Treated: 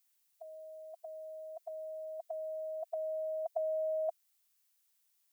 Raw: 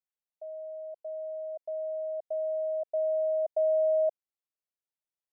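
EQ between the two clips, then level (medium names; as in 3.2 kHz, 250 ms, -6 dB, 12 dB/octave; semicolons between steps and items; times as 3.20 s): brick-wall FIR high-pass 650 Hz; tilt EQ +3.5 dB/octave; +8.5 dB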